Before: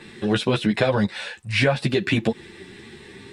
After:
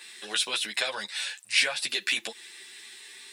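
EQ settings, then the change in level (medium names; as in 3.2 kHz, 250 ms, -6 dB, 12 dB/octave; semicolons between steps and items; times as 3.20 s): high-pass 120 Hz; differentiator; bass shelf 270 Hz -11.5 dB; +8.5 dB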